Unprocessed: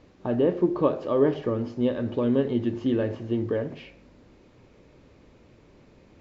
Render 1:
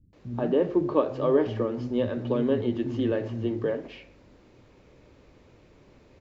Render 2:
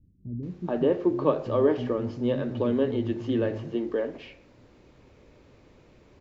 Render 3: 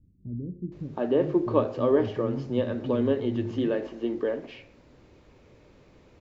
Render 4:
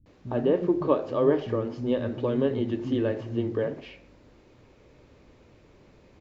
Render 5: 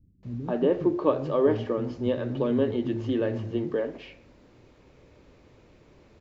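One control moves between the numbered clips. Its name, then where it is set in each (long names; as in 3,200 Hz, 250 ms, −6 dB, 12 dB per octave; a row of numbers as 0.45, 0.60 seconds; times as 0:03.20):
multiband delay without the direct sound, delay time: 130, 430, 720, 60, 230 milliseconds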